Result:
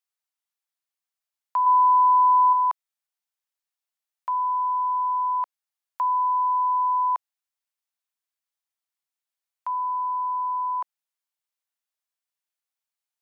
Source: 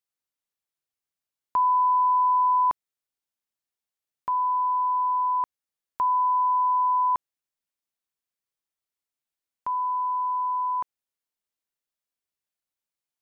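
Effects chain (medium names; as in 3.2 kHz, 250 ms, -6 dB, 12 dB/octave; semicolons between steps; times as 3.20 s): high-pass 640 Hz 24 dB/octave; 1.66–2.53 s: dynamic bell 980 Hz, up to +4 dB, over -33 dBFS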